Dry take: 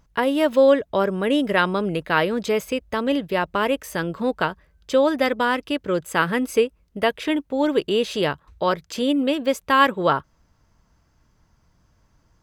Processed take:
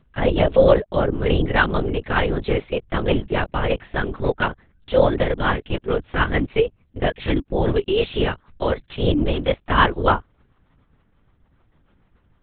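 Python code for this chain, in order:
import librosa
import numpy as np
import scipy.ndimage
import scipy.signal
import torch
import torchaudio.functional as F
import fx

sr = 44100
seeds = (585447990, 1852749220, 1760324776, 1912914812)

y = fx.rotary(x, sr, hz=6.7)
y = fx.lpc_vocoder(y, sr, seeds[0], excitation='whisper', order=8)
y = F.gain(torch.from_numpy(y), 3.5).numpy()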